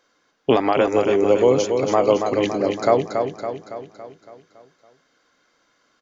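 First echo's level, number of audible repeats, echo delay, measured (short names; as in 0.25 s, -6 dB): -6.0 dB, 6, 0.28 s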